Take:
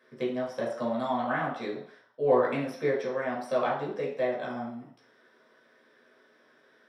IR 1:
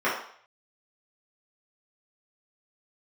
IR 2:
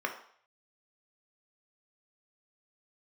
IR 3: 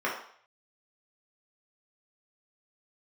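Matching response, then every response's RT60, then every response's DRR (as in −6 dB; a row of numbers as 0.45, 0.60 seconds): 3; 0.60, 0.60, 0.60 seconds; −10.5, 3.0, −5.5 decibels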